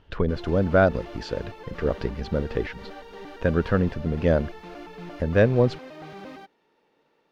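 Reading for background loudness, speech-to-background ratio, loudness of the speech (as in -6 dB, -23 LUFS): -41.5 LUFS, 17.0 dB, -24.5 LUFS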